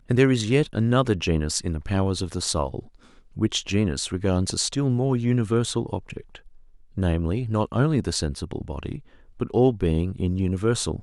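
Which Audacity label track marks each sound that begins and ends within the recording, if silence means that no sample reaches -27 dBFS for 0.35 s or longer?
3.390000	6.350000	sound
6.980000	8.960000	sound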